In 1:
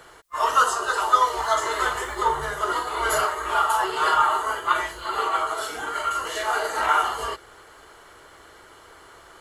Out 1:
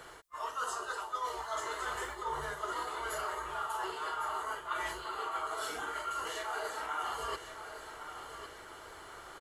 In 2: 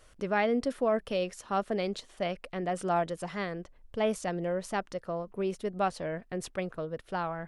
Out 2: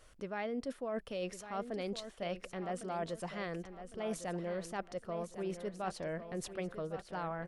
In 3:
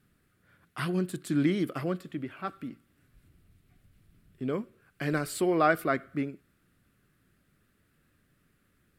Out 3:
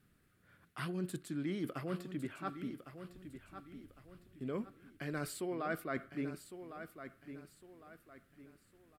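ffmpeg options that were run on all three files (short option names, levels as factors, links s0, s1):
-af "areverse,acompressor=threshold=0.0224:ratio=6,areverse,aecho=1:1:1106|2212|3318|4424:0.299|0.107|0.0387|0.0139,volume=0.75"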